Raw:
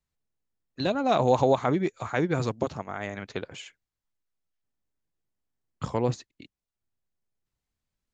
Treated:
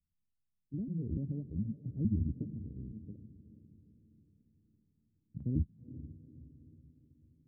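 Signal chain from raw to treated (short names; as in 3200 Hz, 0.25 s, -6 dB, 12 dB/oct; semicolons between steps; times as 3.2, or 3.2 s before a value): trilling pitch shifter -9.5 st, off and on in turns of 0.318 s; inverse Chebyshev low-pass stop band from 770 Hz, stop band 60 dB; tremolo saw down 0.51 Hz, depth 70%; on a send: diffused feedback echo 0.485 s, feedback 49%, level -14 dB; on the sum: speed mistake 44.1 kHz file played as 48 kHz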